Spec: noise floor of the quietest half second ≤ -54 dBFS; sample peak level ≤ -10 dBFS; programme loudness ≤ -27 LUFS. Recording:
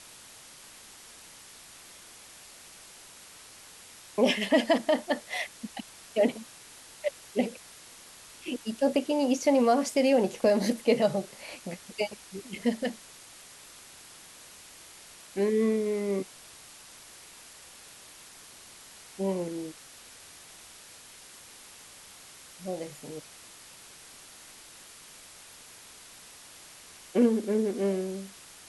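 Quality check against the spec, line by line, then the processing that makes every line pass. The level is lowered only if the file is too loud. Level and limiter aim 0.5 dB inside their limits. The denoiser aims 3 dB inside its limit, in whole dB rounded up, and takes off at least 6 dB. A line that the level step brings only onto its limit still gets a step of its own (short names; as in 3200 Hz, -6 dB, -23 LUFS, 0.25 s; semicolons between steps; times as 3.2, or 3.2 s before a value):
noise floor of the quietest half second -50 dBFS: fail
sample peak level -11.5 dBFS: OK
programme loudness -28.5 LUFS: OK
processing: denoiser 7 dB, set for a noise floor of -50 dBFS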